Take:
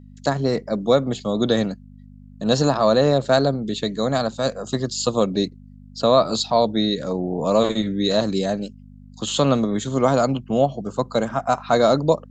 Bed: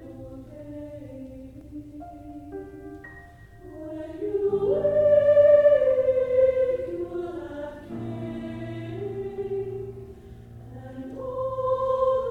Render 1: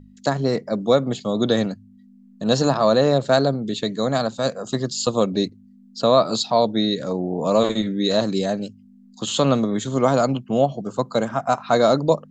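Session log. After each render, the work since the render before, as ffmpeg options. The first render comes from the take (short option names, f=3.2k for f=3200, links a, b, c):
-af "bandreject=f=50:t=h:w=4,bandreject=f=100:t=h:w=4,bandreject=f=150:t=h:w=4"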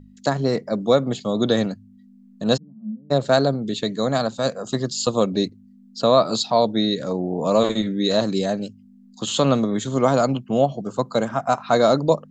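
-filter_complex "[0:a]asplit=3[a][b][c];[a]afade=t=out:st=2.56:d=0.02[d];[b]asuperpass=centerf=200:order=4:qfactor=6.8,afade=t=in:st=2.56:d=0.02,afade=t=out:st=3.1:d=0.02[e];[c]afade=t=in:st=3.1:d=0.02[f];[d][e][f]amix=inputs=3:normalize=0"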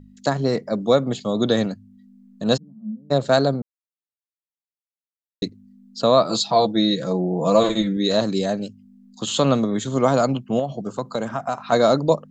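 -filter_complex "[0:a]asettb=1/sr,asplit=3[a][b][c];[a]atrim=end=6.294[d];[b]atrim=start=6.29:end=7.97,asetpts=PTS-STARTPTS,afade=t=in:d=0.004:c=qsin,afade=t=out:st=1.676:d=0.004:c=qsin,aecho=1:1:6:0.65,atrim=end_sample=74088[e];[c]atrim=start=7.966[f];[d][e]acrossfade=d=0.004:c1=hsin:c2=qsin[g];[g][f]acrossfade=d=0.004:c1=qsin:c2=hsin,asettb=1/sr,asplit=3[h][i][j];[h]atrim=end=10.594[k];[i]atrim=start=10.59:end=11.72,asetpts=PTS-STARTPTS,afade=t=in:d=0.004:c=qsin,afade=t=out:st=1.126:d=0.004:c=qsin,acompressor=threshold=-19dB:ratio=6:attack=3.2:release=140:knee=1:detection=peak[l];[j]atrim=start=11.716[m];[k][l]acrossfade=d=0.004:c1=hsin:c2=qsin[n];[n][m]acrossfade=d=0.004:c1=qsin:c2=hsin,asplit=3[o][p][q];[o]atrim=end=3.62,asetpts=PTS-STARTPTS,afade=t=out:st=3.616:d=0.004:c=hsin[r];[p]atrim=start=3.62:end=5.42,asetpts=PTS-STARTPTS,volume=0[s];[q]atrim=start=5.42,asetpts=PTS-STARTPTS,afade=t=in:d=0.004:c=hsin[t];[r][s][t]concat=n=3:v=0:a=1"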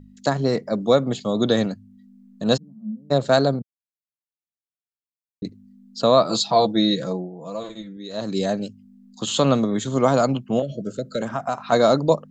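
-filter_complex "[0:a]asettb=1/sr,asplit=3[a][b][c];[a]atrim=end=3.594[d];[b]atrim=start=3.59:end=5.45,asetpts=PTS-STARTPTS,afade=t=in:d=0.004:c=qsin,afade=t=out:st=1.856:d=0.004:c=qsin,bandpass=f=120:t=q:w=0.95[e];[c]atrim=start=5.446[f];[d][e]acrossfade=d=0.004:c1=hsin:c2=qsin[g];[g][f]acrossfade=d=0.004:c1=qsin:c2=hsin,asettb=1/sr,asplit=3[h][i][j];[h]atrim=end=10.624[k];[i]atrim=start=10.62:end=11.22,asetpts=PTS-STARTPTS,afade=t=in:d=0.004:c=qsin,afade=t=out:st=0.596:d=0.004:c=qsin,asuperstop=centerf=920:order=20:qfactor=1.4[l];[j]atrim=start=11.216[m];[k][l]acrossfade=d=0.004:c1=hsin:c2=qsin[n];[n][m]acrossfade=d=0.004:c1=qsin:c2=hsin,asplit=3[o][p][q];[o]atrim=end=7.31,asetpts=PTS-STARTPTS,afade=t=out:st=7:d=0.31:silence=0.177828[r];[p]atrim=start=7.31:end=8.12,asetpts=PTS-STARTPTS,volume=-15dB[s];[q]atrim=start=8.12,asetpts=PTS-STARTPTS,afade=t=in:d=0.31:silence=0.177828[t];[r][s][t]concat=n=3:v=0:a=1"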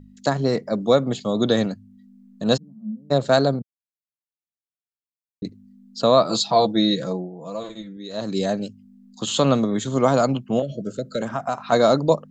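-af anull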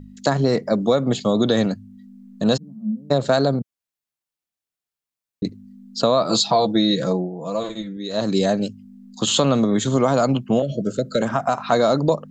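-filter_complex "[0:a]asplit=2[a][b];[b]alimiter=limit=-12dB:level=0:latency=1:release=21,volume=0dB[c];[a][c]amix=inputs=2:normalize=0,acompressor=threshold=-14dB:ratio=4"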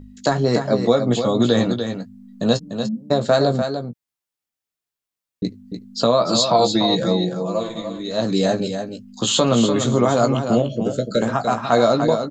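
-filter_complex "[0:a]asplit=2[a][b];[b]adelay=17,volume=-7dB[c];[a][c]amix=inputs=2:normalize=0,aecho=1:1:295:0.422"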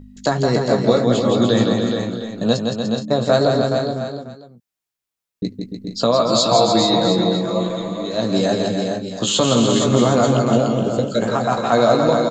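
-af "aecho=1:1:165|422|668:0.562|0.473|0.158"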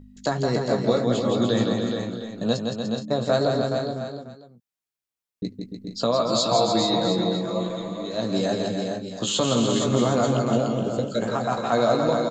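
-af "volume=-6dB"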